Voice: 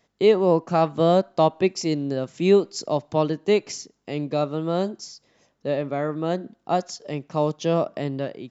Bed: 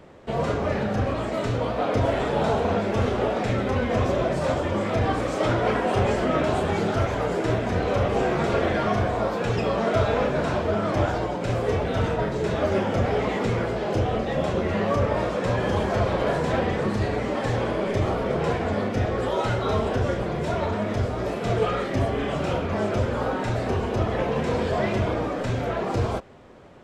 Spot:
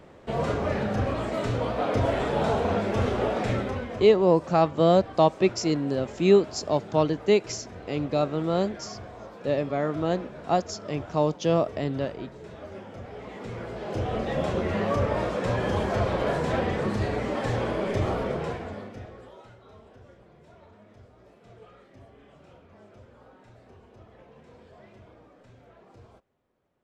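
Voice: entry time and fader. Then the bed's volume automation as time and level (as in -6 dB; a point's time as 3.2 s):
3.80 s, -1.0 dB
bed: 3.55 s -2 dB
4.17 s -18 dB
13.09 s -18 dB
14.25 s -2.5 dB
18.22 s -2.5 dB
19.57 s -27.5 dB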